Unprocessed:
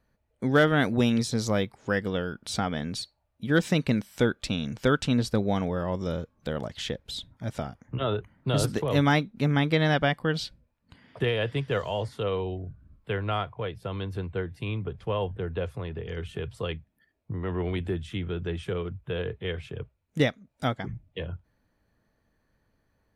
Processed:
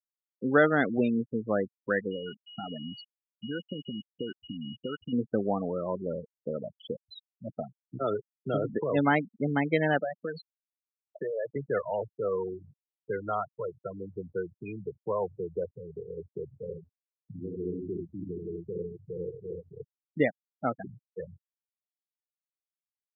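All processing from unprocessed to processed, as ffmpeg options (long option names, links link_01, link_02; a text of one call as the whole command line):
ffmpeg -i in.wav -filter_complex "[0:a]asettb=1/sr,asplit=3[link_01][link_02][link_03];[link_01]atrim=end=2.114[link_04];[link_02]atrim=start=2.11:end=5.13,asetpts=PTS-STARTPTS,afade=type=in:duration=0.004:curve=qsin,afade=type=out:start_time=3.016:duration=0.004:curve=qsin,acompressor=threshold=-26dB:ratio=12:attack=3.2:release=140:knee=1:detection=peak,aeval=exprs='val(0)+0.0126*sin(2*PI*2900*n/s)':channel_layout=same,aeval=exprs='sgn(val(0))*max(abs(val(0))-0.00282,0)':channel_layout=same[link_05];[link_03]atrim=start=5.126[link_06];[link_04][link_05]acrossfade=duration=0.004:curve1=hsin:curve2=qsin[link_07];[link_07][link_06]acrossfade=duration=0.004:curve1=qsin:curve2=hsin,asettb=1/sr,asplit=3[link_08][link_09][link_10];[link_08]atrim=end=9.994[link_11];[link_09]atrim=start=9.99:end=11.56,asetpts=PTS-STARTPTS,afade=type=in:duration=0.004:curve=qsin,afade=type=out:start_time=1.566:duration=0.004:curve=qsin,highpass=170,equalizer=frequency=280:width_type=q:width=4:gain=-3,equalizer=frequency=590:width_type=q:width=4:gain=8,equalizer=frequency=4400:width_type=q:width=4:gain=8,lowpass=frequency=8100:width=0.5412,lowpass=frequency=8100:width=1.3066,acompressor=threshold=-28dB:ratio=4:attack=3.2:release=140:knee=1:detection=peak[link_12];[link_10]atrim=start=11.556[link_13];[link_11][link_12]acrossfade=duration=0.004:curve1=hsin:curve2=qsin[link_14];[link_14][link_13]acrossfade=duration=0.004:curve1=qsin:curve2=hsin,asettb=1/sr,asplit=3[link_15][link_16][link_17];[link_15]atrim=end=16.444[link_18];[link_16]atrim=start=16.44:end=19.77,asetpts=PTS-STARTPTS,afade=type=in:duration=0.004:curve=qsin,afade=type=out:start_time=3.326:duration=0.004:curve=qsin,equalizer=frequency=1800:width=0.34:gain=-12.5,aecho=1:1:50|80|164:0.398|0.708|0.1,atrim=end_sample=146853[link_19];[link_17]atrim=start=19.766[link_20];[link_18][link_19]acrossfade=duration=0.004:curve1=hsin:curve2=qsin[link_21];[link_21][link_20]acrossfade=duration=0.004:curve1=qsin:curve2=hsin,lowpass=3100,afftfilt=real='re*gte(hypot(re,im),0.0708)':imag='im*gte(hypot(re,im),0.0708)':win_size=1024:overlap=0.75,highpass=230" out.wav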